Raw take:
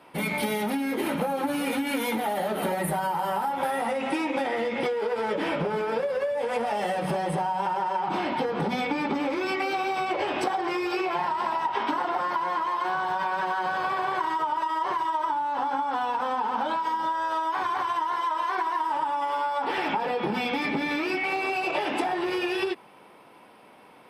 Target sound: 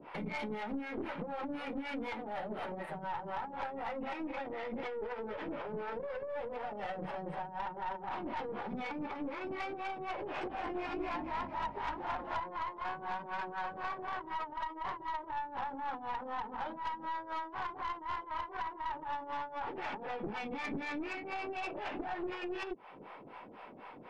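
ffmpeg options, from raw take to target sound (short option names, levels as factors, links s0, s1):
-filter_complex "[0:a]lowpass=2400,acompressor=threshold=0.0141:ratio=16,acrossover=split=530[s0][s1];[s0]aeval=exprs='val(0)*(1-1/2+1/2*cos(2*PI*4*n/s))':c=same[s2];[s1]aeval=exprs='val(0)*(1-1/2-1/2*cos(2*PI*4*n/s))':c=same[s3];[s2][s3]amix=inputs=2:normalize=0,aeval=exprs='(tanh(100*val(0)+0.5)-tanh(0.5))/100':c=same,asettb=1/sr,asplit=3[s4][s5][s6];[s4]atrim=end=10.164[s7];[s5]atrim=start=10.16:end=12.4,asetpts=PTS-STARTPTS,afade=t=in:d=0.004:c=qsin,afade=t=out:st=2.236:d=0.004:c=qsin,asplit=7[s8][s9][s10][s11][s12][s13][s14];[s9]adelay=225,afreqshift=-52,volume=0.562[s15];[s10]adelay=450,afreqshift=-104,volume=0.263[s16];[s11]adelay=675,afreqshift=-156,volume=0.124[s17];[s12]adelay=900,afreqshift=-208,volume=0.0582[s18];[s13]adelay=1125,afreqshift=-260,volume=0.0275[s19];[s14]adelay=1350,afreqshift=-312,volume=0.0129[s20];[s8][s15][s16][s17][s18][s19][s20]amix=inputs=7:normalize=0,atrim=end_sample=98784[s21];[s6]atrim=start=12.396[s22];[s7][s21]acrossfade=d=0.004:c1=hsin:c2=qsin[s23];[s23][s22]acrossfade=d=0.004:c1=qsin:c2=hsin,volume=2.66"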